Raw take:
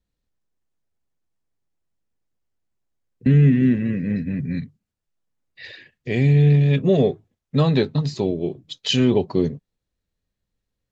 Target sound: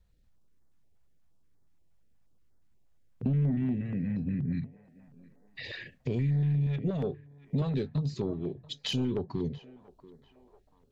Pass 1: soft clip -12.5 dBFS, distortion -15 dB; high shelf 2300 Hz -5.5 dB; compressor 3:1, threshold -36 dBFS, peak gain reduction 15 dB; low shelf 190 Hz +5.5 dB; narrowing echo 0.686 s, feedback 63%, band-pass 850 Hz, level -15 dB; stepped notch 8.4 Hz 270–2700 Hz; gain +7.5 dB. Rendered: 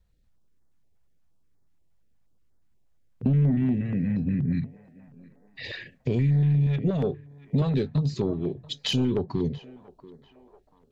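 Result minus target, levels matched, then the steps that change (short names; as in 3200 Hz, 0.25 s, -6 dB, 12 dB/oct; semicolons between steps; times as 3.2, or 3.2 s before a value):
compressor: peak gain reduction -5.5 dB
change: compressor 3:1, threshold -44.5 dBFS, peak gain reduction 20.5 dB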